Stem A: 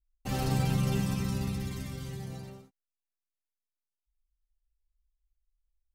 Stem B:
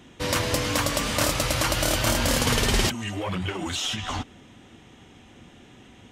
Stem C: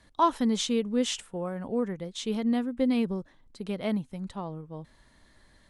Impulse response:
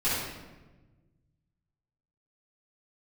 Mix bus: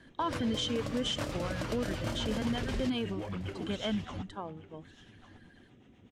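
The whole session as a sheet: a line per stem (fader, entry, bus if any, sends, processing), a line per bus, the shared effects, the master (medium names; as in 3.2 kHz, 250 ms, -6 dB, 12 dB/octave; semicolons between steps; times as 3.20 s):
-19.0 dB, 0.40 s, no send, no echo send, none
-10.0 dB, 0.00 s, no send, echo send -16 dB, rotary cabinet horn 8 Hz; high-pass 120 Hz 6 dB/octave; tilt EQ -2 dB/octave
-2.5 dB, 0.00 s, no send, no echo send, reverb removal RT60 1.9 s; de-hum 416.8 Hz, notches 37; small resonant body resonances 1.6/3.1 kHz, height 16 dB, ringing for 25 ms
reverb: none
echo: delay 1152 ms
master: treble shelf 7.7 kHz -8 dB; peak limiter -23.5 dBFS, peak gain reduction 10.5 dB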